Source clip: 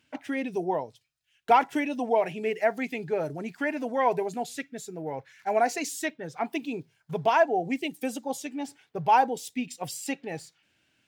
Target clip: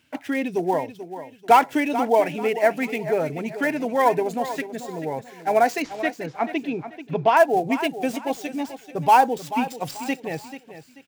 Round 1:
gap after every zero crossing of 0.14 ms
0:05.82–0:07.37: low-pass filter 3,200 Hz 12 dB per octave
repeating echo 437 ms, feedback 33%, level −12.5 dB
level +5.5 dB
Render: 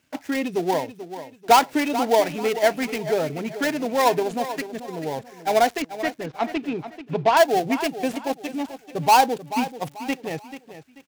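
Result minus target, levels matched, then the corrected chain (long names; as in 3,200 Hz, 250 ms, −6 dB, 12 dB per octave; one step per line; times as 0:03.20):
gap after every zero crossing: distortion +9 dB
gap after every zero crossing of 0.043 ms
0:05.82–0:07.37: low-pass filter 3,200 Hz 12 dB per octave
repeating echo 437 ms, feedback 33%, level −12.5 dB
level +5.5 dB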